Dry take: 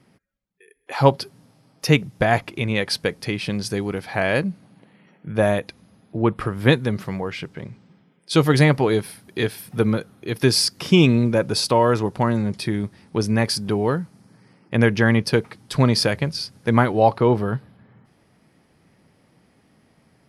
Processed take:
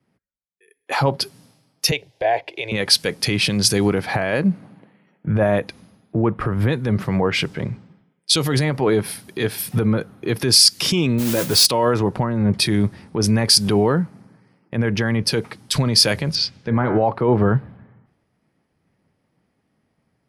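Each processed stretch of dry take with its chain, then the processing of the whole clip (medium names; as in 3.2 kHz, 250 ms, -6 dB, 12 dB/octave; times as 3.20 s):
1.91–2.72 s: three-band isolator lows -15 dB, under 410 Hz, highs -19 dB, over 4.5 kHz + static phaser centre 520 Hz, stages 4
11.18–11.66 s: modulation noise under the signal 10 dB + doubling 12 ms -8 dB
16.35–17.03 s: distance through air 170 m + de-hum 69.62 Hz, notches 35
whole clip: compression 2:1, threshold -32 dBFS; loudness maximiser +24.5 dB; three bands expanded up and down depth 100%; trim -9.5 dB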